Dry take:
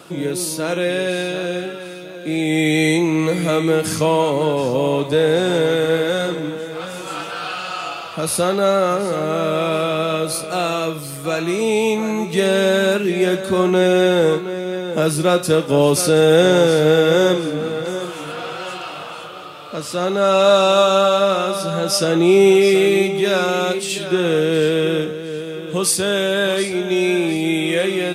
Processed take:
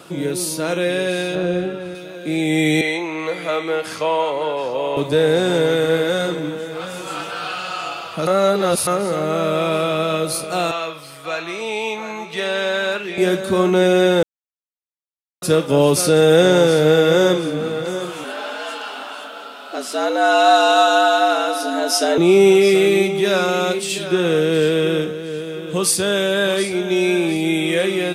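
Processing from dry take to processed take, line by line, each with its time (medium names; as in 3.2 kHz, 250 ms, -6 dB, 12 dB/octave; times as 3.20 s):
1.35–1.95 s: tilt EQ -2.5 dB/octave
2.81–4.97 s: three-band isolator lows -18 dB, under 440 Hz, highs -13 dB, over 4.2 kHz
8.27–8.87 s: reverse
10.71–13.18 s: three-band isolator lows -14 dB, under 590 Hz, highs -13 dB, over 5.2 kHz
14.23–15.42 s: mute
18.24–22.18 s: frequency shift +110 Hz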